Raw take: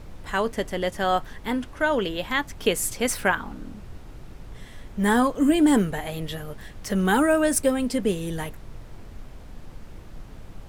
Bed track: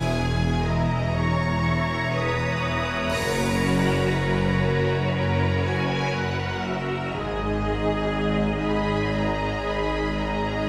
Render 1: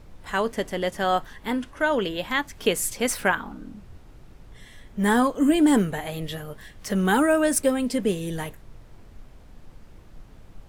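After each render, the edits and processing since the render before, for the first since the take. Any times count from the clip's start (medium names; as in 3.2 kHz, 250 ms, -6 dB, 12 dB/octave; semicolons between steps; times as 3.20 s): noise print and reduce 6 dB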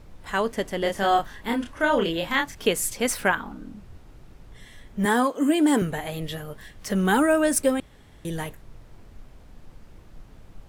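0.79–2.55 s: doubling 30 ms -3 dB; 5.05–5.82 s: high-pass 250 Hz; 7.80–8.25 s: room tone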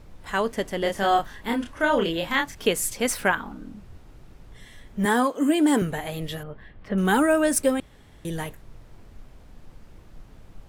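6.43–6.98 s: distance through air 440 m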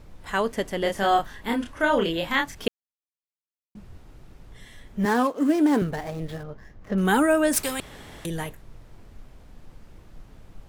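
2.68–3.75 s: mute; 5.01–7.01 s: median filter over 15 samples; 7.53–8.26 s: spectrum-flattening compressor 2:1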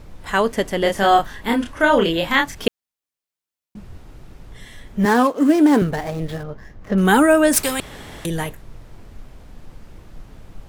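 trim +6.5 dB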